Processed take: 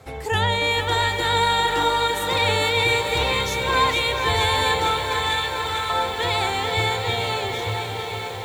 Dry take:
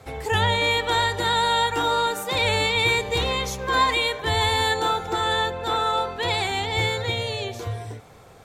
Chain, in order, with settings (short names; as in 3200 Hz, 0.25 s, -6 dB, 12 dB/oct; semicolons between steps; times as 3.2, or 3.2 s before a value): 4.99–5.9 steep high-pass 1400 Hz 48 dB/oct; tape echo 0.7 s, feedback 65%, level -8.5 dB, low-pass 5000 Hz; lo-fi delay 0.449 s, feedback 80%, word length 7-bit, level -8 dB